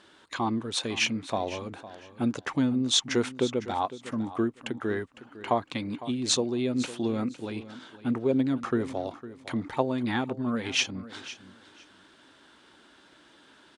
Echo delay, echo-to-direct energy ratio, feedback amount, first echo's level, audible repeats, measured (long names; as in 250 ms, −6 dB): 506 ms, −15.5 dB, 19%, −15.5 dB, 2